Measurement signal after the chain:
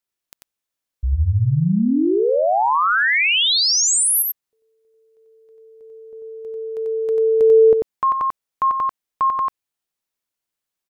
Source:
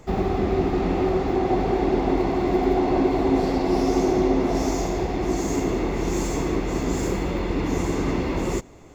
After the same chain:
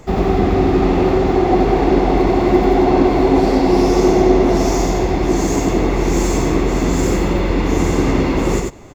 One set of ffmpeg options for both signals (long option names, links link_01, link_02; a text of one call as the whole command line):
ffmpeg -i in.wav -af "aecho=1:1:92:0.668,volume=6.5dB" out.wav